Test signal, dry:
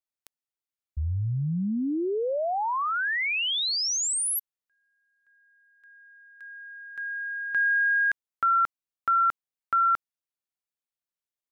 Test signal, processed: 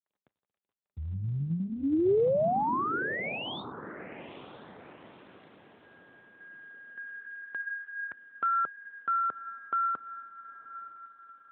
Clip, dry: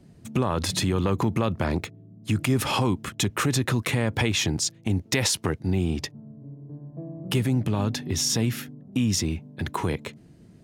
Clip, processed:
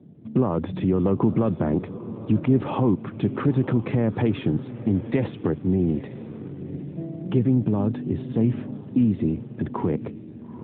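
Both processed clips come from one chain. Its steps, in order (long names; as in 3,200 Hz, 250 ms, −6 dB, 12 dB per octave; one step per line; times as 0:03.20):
resonant band-pass 280 Hz, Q 0.64
on a send: feedback delay with all-pass diffusion 900 ms, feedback 43%, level −14 dB
on the sum: level +5.5 dB
AMR narrowband 12.2 kbit/s 8,000 Hz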